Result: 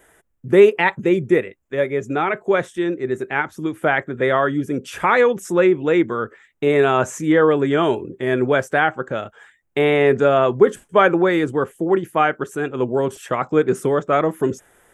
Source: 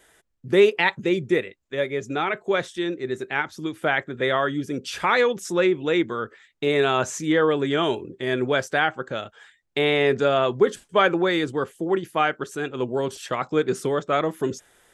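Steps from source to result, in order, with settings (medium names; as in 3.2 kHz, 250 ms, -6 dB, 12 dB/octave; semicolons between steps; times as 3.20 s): peaking EQ 4.4 kHz -14.5 dB 1.1 oct; trim +5.5 dB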